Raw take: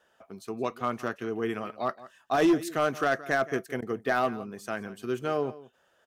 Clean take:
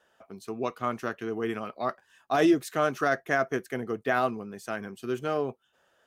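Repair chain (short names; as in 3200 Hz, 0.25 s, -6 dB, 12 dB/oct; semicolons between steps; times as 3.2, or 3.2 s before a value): clip repair -17 dBFS; interpolate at 3.81, 11 ms; inverse comb 0.171 s -18 dB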